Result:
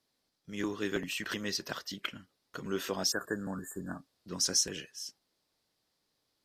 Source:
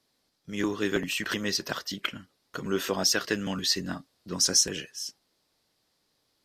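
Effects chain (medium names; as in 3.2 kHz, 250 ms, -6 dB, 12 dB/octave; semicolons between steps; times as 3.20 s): spectral replace 3.14–4.01 s, 1.8–6.8 kHz after; trim -6 dB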